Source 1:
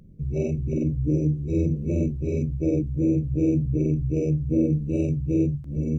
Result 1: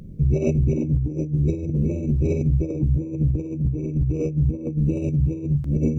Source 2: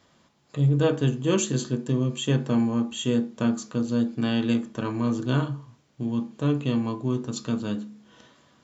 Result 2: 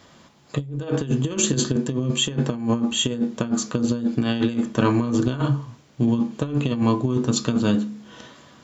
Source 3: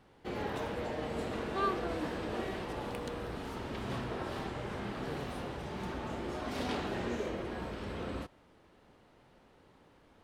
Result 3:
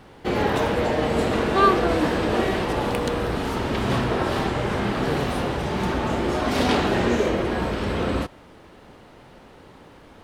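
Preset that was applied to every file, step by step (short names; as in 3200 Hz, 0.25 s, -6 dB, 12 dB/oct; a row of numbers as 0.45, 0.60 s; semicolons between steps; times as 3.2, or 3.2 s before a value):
negative-ratio compressor -27 dBFS, ratio -0.5; match loudness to -23 LUFS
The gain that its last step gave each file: +6.5, +6.5, +15.0 dB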